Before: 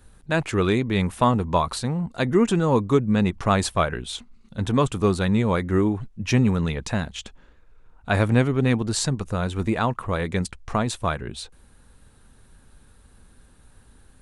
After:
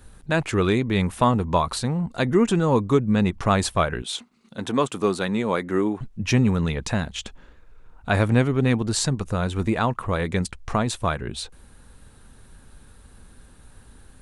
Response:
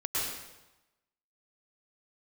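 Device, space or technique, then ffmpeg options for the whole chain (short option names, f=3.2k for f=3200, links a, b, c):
parallel compression: -filter_complex "[0:a]asplit=2[a][b];[b]acompressor=threshold=-32dB:ratio=6,volume=-2dB[c];[a][c]amix=inputs=2:normalize=0,asettb=1/sr,asplit=3[d][e][f];[d]atrim=end=4.024[g];[e]atrim=start=4.02:end=6.01,asetpts=PTS-STARTPTS,afade=t=in:d=0.004:c=qsin,afade=t=out:st=1.986:d=0.004:c=qsin,highpass=230[h];[f]atrim=start=6.006[i];[g][h]acrossfade=d=0.004:c1=hsin:c2=qsin[j];[j][i]acrossfade=d=0.004:c1=qsin:c2=hsin,volume=-1dB"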